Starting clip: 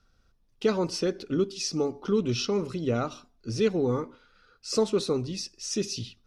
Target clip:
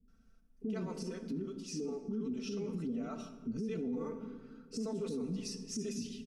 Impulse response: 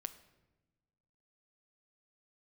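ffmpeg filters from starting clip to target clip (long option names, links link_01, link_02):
-filter_complex "[0:a]acrossover=split=450[link_01][link_02];[link_02]adelay=80[link_03];[link_01][link_03]amix=inputs=2:normalize=0,acompressor=threshold=-30dB:ratio=6,equalizer=frequency=250:width_type=o:width=1:gain=9,equalizer=frequency=1000:width_type=o:width=1:gain=-6,equalizer=frequency=4000:width_type=o:width=1:gain=-10,asettb=1/sr,asplit=3[link_04][link_05][link_06];[link_04]atrim=end=0.994[link_07];[link_05]atrim=start=0.99:end=3.11,asetpts=PTS-STARTPTS,afade=type=in:duration=0.004:curve=qsin,afade=type=out:start_time=2.116:duration=0.004:curve=qsin,flanger=delay=6.7:depth=7.7:regen=73:speed=1:shape=triangular[link_08];[link_06]atrim=start=3.106[link_09];[link_07][link_08]acrossfade=duration=0.004:curve1=hsin:curve2=qsin[link_10];[link_10][link_09]acrossfade=duration=0.004:curve1=qsin:curve2=hsin,aecho=1:1:4.5:0.74[link_11];[1:a]atrim=start_sample=2205,asetrate=24255,aresample=44100[link_12];[link_11][link_12]afir=irnorm=-1:irlink=0,alimiter=level_in=2.5dB:limit=-24dB:level=0:latency=1:release=48,volume=-2.5dB,volume=-4dB"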